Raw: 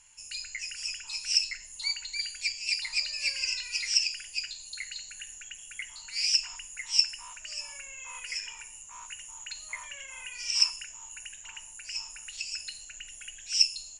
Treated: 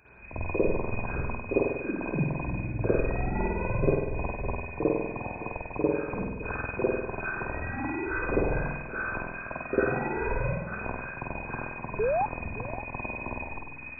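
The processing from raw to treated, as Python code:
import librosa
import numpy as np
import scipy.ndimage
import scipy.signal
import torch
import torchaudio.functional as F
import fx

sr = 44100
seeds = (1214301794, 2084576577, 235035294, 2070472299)

y = fx.over_compress(x, sr, threshold_db=-33.0, ratio=-0.5)
y = fx.freq_invert(y, sr, carrier_hz=2500)
y = fx.rev_spring(y, sr, rt60_s=1.0, pass_ms=(48,), chirp_ms=40, drr_db=-10.0)
y = fx.spec_paint(y, sr, seeds[0], shape='rise', start_s=11.99, length_s=0.27, low_hz=400.0, high_hz=890.0, level_db=-29.0)
y = y + 10.0 ** (-15.5 / 20.0) * np.pad(y, (int(565 * sr / 1000.0), 0))[:len(y)]
y = F.gain(torch.from_numpy(y), 3.5).numpy()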